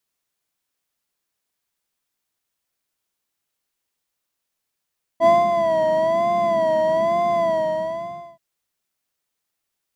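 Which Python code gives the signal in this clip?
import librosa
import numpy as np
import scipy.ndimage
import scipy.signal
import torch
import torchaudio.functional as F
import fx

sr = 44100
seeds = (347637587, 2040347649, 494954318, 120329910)

y = fx.sub_patch_vibrato(sr, seeds[0], note=76, wave='square', wave2='sine', interval_st=7, detune_cents=16, level2_db=-3, sub_db=-28.5, noise_db=-10.0, kind='bandpass', cutoff_hz=150.0, q=4.5, env_oct=1.0, env_decay_s=0.07, env_sustain_pct=40, attack_ms=68.0, decay_s=0.2, sustain_db=-7, release_s=0.94, note_s=2.24, lfo_hz=1.1, vibrato_cents=84)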